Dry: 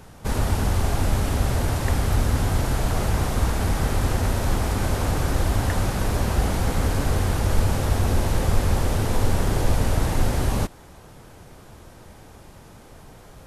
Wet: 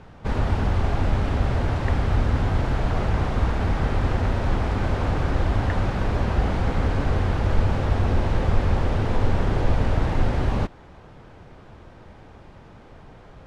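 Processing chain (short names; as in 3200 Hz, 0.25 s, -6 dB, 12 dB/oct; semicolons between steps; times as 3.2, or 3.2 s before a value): LPF 3100 Hz 12 dB/oct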